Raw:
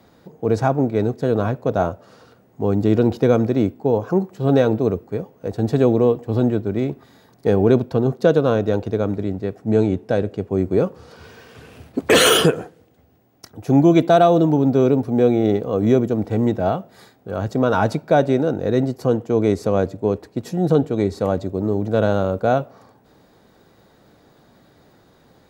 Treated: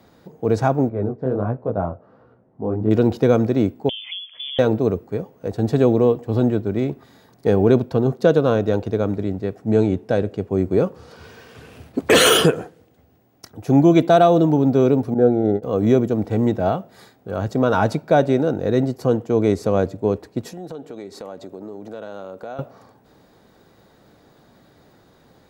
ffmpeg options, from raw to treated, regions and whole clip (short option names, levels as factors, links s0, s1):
-filter_complex "[0:a]asettb=1/sr,asplit=3[s0][s1][s2];[s0]atrim=end=0.894[s3];[s1]atrim=start=0.89:end=2.91,asetpts=PTS-STARTPTS,afade=t=in:d=0.004:c=qsin,afade=t=out:st=2.016:d=0.004:c=qsin,lowpass=1200,flanger=delay=16:depth=7.5:speed=1.4[s4];[s2]atrim=start=2.906[s5];[s3][s4]acrossfade=d=0.004:c1=hsin:c2=qsin[s6];[s6][s5]acrossfade=d=0.004:c1=qsin:c2=hsin,asettb=1/sr,asplit=3[s7][s8][s9];[s7]atrim=end=3.894[s10];[s8]atrim=start=3.89:end=4.59,asetpts=PTS-STARTPTS,afade=t=in:d=0.004:c=qsin,afade=t=out:st=0.696:d=0.004:c=qsin,acompressor=threshold=0.0398:ratio=6:attack=3.2:release=140:knee=1:detection=peak,lowpass=f=3100:t=q:w=0.5098,lowpass=f=3100:t=q:w=0.6013,lowpass=f=3100:t=q:w=0.9,lowpass=f=3100:t=q:w=2.563,afreqshift=-3600[s11];[s9]atrim=start=4.586[s12];[s10][s11]acrossfade=d=0.004:c1=hsin:c2=qsin[s13];[s13][s12]acrossfade=d=0.004:c1=qsin:c2=hsin,asettb=1/sr,asplit=3[s14][s15][s16];[s14]atrim=end=15.144[s17];[s15]atrim=start=15.14:end=15.63,asetpts=PTS-STARTPTS,afade=t=in:d=0.004:c=qsin,afade=t=out:st=0.486:d=0.004:c=qsin,highshelf=f=1800:t=q:w=3:g=-11.5,agate=range=0.0224:threshold=0.178:ratio=3:release=100:detection=peak,asuperstop=centerf=1100:order=4:qfactor=2[s18];[s16]atrim=start=15.626[s19];[s17][s18]acrossfade=d=0.004:c1=hsin:c2=qsin[s20];[s20][s19]acrossfade=d=0.004:c1=qsin:c2=hsin,asettb=1/sr,asplit=3[s21][s22][s23];[s21]atrim=end=20.474[s24];[s22]atrim=start=20.47:end=22.59,asetpts=PTS-STARTPTS,afade=t=in:d=0.004:c=qsin,afade=t=out:st=2.116:d=0.004:c=qsin,highpass=150,lowshelf=f=210:g=-11,acompressor=threshold=0.0251:ratio=4:attack=3.2:release=140:knee=1:detection=peak[s25];[s23]atrim=start=22.586[s26];[s24][s25]acrossfade=d=0.004:c1=hsin:c2=qsin[s27];[s27][s26]acrossfade=d=0.004:c1=qsin:c2=hsin"